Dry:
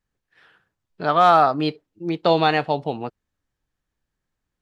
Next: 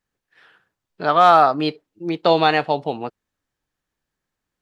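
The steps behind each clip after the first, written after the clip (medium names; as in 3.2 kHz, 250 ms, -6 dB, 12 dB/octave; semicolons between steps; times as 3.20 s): bass shelf 140 Hz -9.5 dB; trim +2.5 dB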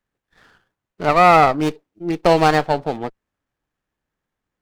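sliding maximum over 9 samples; trim +1.5 dB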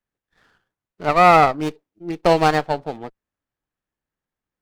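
upward expansion 1.5:1, over -23 dBFS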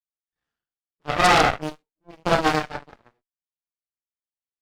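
gated-style reverb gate 150 ms falling, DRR -7 dB; half-wave rectifier; Chebyshev shaper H 3 -38 dB, 4 -11 dB, 6 -8 dB, 7 -16 dB, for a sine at 7.5 dBFS; trim -12 dB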